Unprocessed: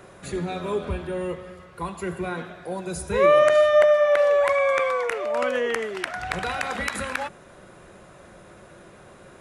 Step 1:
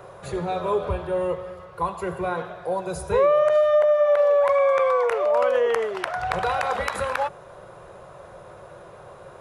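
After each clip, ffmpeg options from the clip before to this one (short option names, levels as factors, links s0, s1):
-af "equalizer=f=125:t=o:w=1:g=6,equalizer=f=250:t=o:w=1:g=-12,equalizer=f=500:t=o:w=1:g=8,equalizer=f=1000:t=o:w=1:g=7,equalizer=f=2000:t=o:w=1:g=-4,equalizer=f=8000:t=o:w=1:g=-5,acompressor=threshold=0.158:ratio=6"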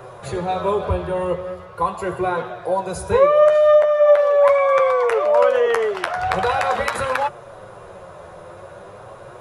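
-af "flanger=delay=7.7:depth=4.4:regen=38:speed=0.42:shape=triangular,volume=2.66"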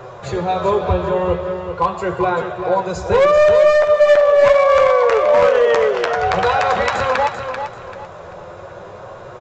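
-af "aresample=16000,volume=3.98,asoftclip=hard,volume=0.251,aresample=44100,aecho=1:1:389|778|1167|1556:0.398|0.123|0.0383|0.0119,volume=1.5"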